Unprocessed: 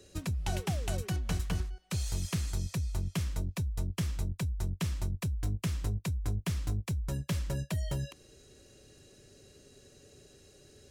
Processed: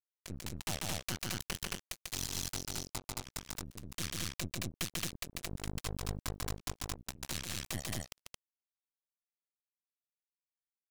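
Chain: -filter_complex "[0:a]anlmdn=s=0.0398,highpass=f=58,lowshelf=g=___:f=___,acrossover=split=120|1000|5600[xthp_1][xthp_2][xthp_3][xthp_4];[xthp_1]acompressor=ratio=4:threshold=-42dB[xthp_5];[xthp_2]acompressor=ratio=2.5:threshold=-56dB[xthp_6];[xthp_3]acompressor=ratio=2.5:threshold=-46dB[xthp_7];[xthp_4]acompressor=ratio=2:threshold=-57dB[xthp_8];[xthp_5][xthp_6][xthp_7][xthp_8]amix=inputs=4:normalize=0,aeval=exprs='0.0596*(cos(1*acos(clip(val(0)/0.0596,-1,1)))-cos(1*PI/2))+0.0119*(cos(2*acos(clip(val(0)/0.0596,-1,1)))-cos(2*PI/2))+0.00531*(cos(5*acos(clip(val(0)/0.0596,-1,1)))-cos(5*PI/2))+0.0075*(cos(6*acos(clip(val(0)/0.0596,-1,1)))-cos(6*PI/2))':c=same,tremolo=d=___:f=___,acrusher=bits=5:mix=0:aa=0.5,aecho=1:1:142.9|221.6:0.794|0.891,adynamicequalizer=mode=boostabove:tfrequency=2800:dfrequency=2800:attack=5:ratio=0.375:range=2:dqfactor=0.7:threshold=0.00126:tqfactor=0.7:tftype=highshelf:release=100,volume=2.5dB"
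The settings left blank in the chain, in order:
-11, 150, 0.97, 2.7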